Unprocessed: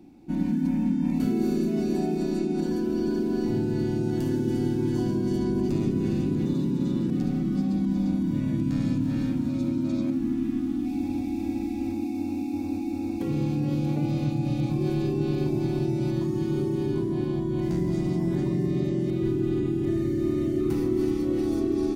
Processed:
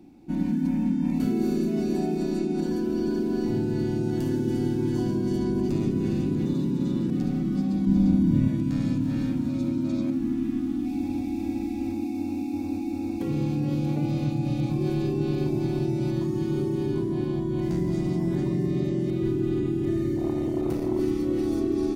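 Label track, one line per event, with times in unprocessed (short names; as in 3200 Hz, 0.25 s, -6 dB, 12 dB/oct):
7.870000	8.480000	low shelf 230 Hz +9.5 dB
20.160000	21.000000	core saturation saturates under 300 Hz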